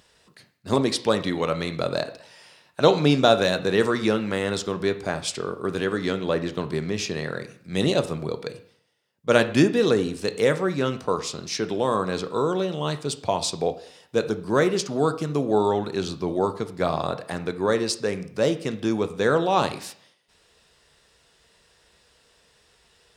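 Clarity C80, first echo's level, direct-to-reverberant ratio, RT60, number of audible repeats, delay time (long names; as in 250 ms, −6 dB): 17.0 dB, no echo audible, 9.0 dB, 0.60 s, no echo audible, no echo audible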